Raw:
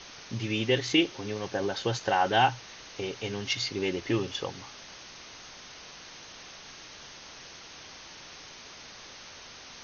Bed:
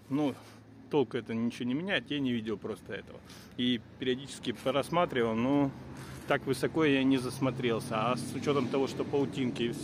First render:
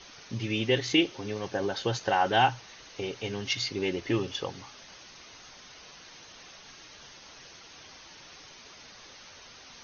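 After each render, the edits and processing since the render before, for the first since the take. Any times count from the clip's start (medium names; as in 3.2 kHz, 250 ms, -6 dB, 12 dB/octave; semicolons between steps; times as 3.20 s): noise reduction 6 dB, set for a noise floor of -48 dBFS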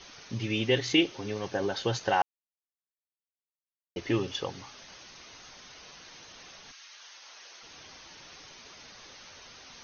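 2.22–3.96 s: mute; 6.71–7.61 s: high-pass 1.4 kHz -> 480 Hz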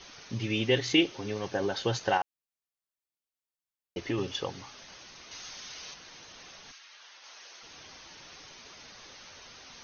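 2.17–4.18 s: compression 3:1, threshold -27 dBFS; 5.31–5.94 s: treble shelf 2 kHz +8.5 dB; 6.78–7.24 s: distance through air 87 m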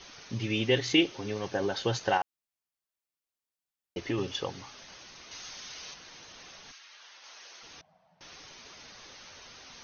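7.81–8.21 s: two resonant band-passes 340 Hz, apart 2 oct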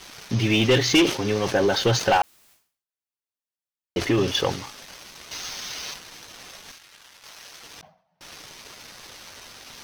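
waveshaping leveller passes 3; decay stretcher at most 120 dB/s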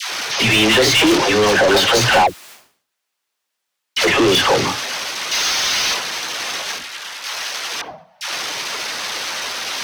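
phase dispersion lows, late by 125 ms, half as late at 590 Hz; overdrive pedal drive 28 dB, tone 4.7 kHz, clips at -6 dBFS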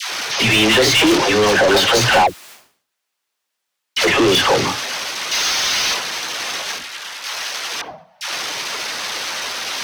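no audible change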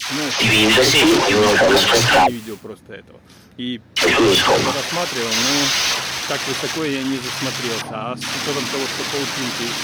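add bed +4 dB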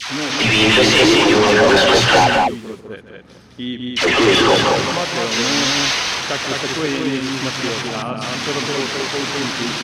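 distance through air 53 m; loudspeakers at several distances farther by 49 m -10 dB, 71 m -3 dB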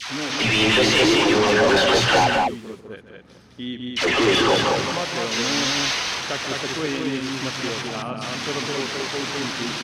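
trim -5 dB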